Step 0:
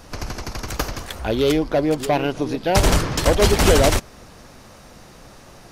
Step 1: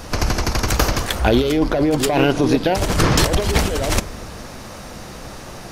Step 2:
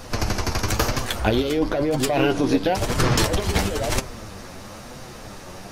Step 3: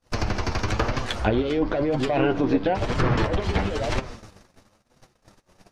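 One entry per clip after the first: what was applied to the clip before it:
compressor whose output falls as the input rises −22 dBFS, ratio −1; convolution reverb RT60 1.0 s, pre-delay 7 ms, DRR 15.5 dB; level +5.5 dB
flanger 1 Hz, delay 7.5 ms, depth 3.7 ms, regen +39%
treble cut that deepens with the level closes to 2,200 Hz, closed at −16 dBFS; noise gate −34 dBFS, range −40 dB; level −1.5 dB

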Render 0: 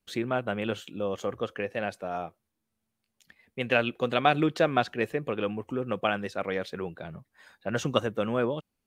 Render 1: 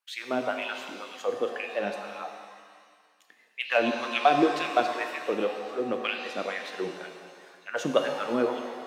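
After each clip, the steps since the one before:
in parallel at −10 dB: hard clipping −18 dBFS, distortion −13 dB
on the sum: auto-filter high-pass sine 2 Hz 240–2,600 Hz
reverb with rising layers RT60 1.8 s, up +7 semitones, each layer −8 dB, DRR 4.5 dB
level −5 dB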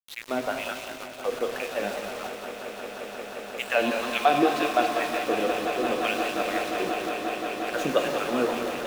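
centre clipping without the shift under −35.5 dBFS
echo that builds up and dies away 177 ms, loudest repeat 8, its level −14 dB
feedback echo with a swinging delay time 199 ms, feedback 50%, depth 102 cents, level −9 dB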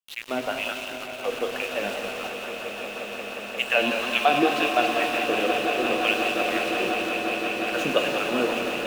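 parametric band 2,800 Hz +8.5 dB 0.38 octaves
echo that builds up and dies away 153 ms, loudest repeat 5, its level −16 dB

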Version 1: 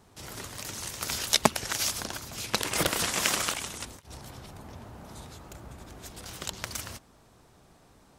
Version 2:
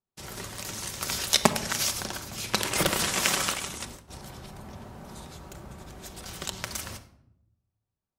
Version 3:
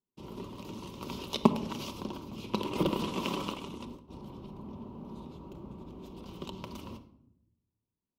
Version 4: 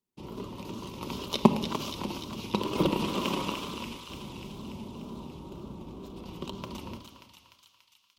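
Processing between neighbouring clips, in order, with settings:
noise gate −49 dBFS, range −37 dB; convolution reverb RT60 0.80 s, pre-delay 5 ms, DRR 8 dB; level +1 dB
drawn EQ curve 110 Hz 0 dB, 260 Hz +11 dB, 460 Hz +5 dB, 740 Hz −6 dB, 1,000 Hz +6 dB, 1,700 Hz −21 dB, 2,800 Hz −2 dB, 8,400 Hz −22 dB, 15,000 Hz −13 dB; level −5.5 dB
feedback echo with a high-pass in the loop 292 ms, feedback 72%, high-pass 1,200 Hz, level −5.5 dB; tape wow and flutter 60 cents; level +3 dB

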